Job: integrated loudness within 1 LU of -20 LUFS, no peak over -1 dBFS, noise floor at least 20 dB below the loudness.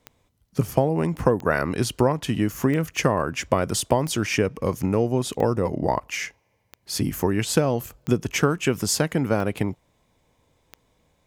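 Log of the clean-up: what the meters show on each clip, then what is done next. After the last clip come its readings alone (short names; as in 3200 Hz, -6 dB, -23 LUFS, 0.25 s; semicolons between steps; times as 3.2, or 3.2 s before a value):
clicks 9; loudness -24.0 LUFS; peak -3.5 dBFS; loudness target -20.0 LUFS
-> de-click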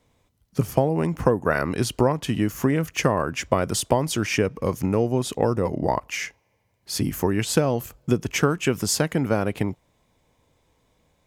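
clicks 0; loudness -24.0 LUFS; peak -3.5 dBFS; loudness target -20.0 LUFS
-> gain +4 dB; limiter -1 dBFS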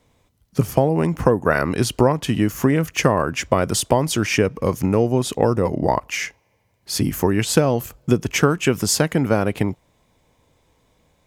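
loudness -20.0 LUFS; peak -1.0 dBFS; noise floor -64 dBFS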